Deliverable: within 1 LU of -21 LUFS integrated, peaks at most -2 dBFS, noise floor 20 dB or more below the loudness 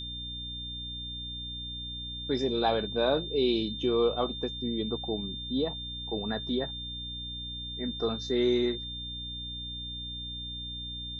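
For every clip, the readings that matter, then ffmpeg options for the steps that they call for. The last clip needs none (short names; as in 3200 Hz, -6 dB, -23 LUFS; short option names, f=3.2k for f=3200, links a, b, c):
hum 60 Hz; harmonics up to 300 Hz; hum level -41 dBFS; steady tone 3600 Hz; tone level -37 dBFS; loudness -31.5 LUFS; peak -14.5 dBFS; loudness target -21.0 LUFS
-> -af "bandreject=f=60:t=h:w=4,bandreject=f=120:t=h:w=4,bandreject=f=180:t=h:w=4,bandreject=f=240:t=h:w=4,bandreject=f=300:t=h:w=4"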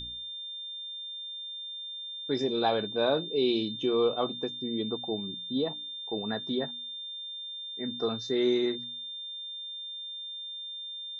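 hum none; steady tone 3600 Hz; tone level -37 dBFS
-> -af "bandreject=f=3.6k:w=30"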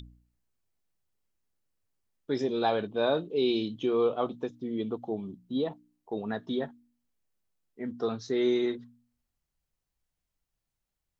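steady tone none; loudness -31.0 LUFS; peak -14.5 dBFS; loudness target -21.0 LUFS
-> -af "volume=10dB"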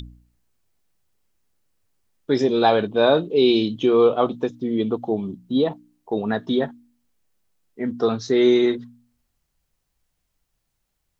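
loudness -21.0 LUFS; peak -4.5 dBFS; noise floor -75 dBFS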